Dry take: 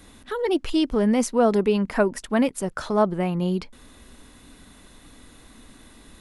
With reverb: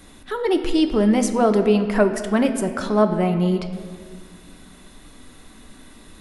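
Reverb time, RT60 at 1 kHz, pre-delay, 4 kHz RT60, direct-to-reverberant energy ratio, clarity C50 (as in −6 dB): 1.9 s, 1.7 s, 3 ms, 1.3 s, 6.5 dB, 9.5 dB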